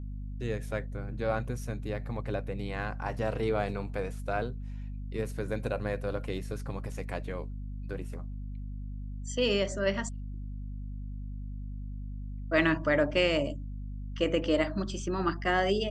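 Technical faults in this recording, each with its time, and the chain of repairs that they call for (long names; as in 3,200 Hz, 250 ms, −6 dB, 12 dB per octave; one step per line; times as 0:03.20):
mains hum 50 Hz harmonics 5 −38 dBFS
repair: hum removal 50 Hz, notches 5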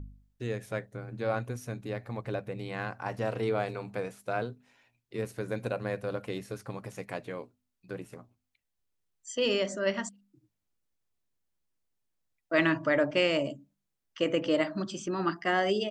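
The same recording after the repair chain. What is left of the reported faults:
none of them is left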